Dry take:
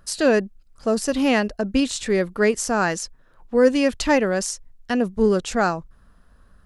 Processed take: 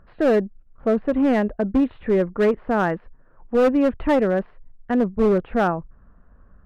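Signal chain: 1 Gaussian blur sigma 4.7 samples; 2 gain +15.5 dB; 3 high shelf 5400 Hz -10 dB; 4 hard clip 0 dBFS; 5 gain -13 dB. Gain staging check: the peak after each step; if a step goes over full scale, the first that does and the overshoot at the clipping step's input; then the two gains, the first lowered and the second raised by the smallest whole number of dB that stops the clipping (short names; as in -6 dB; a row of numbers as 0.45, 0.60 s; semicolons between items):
-6.0, +9.5, +9.5, 0.0, -13.0 dBFS; step 2, 9.5 dB; step 2 +5.5 dB, step 5 -3 dB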